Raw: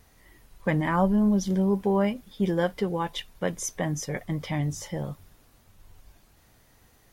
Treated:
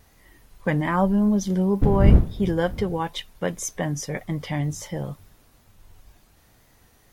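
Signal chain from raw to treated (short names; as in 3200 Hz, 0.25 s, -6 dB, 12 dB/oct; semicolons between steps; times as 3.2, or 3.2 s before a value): 1.81–3.02 wind noise 120 Hz -23 dBFS; wow and flutter 48 cents; gain +2 dB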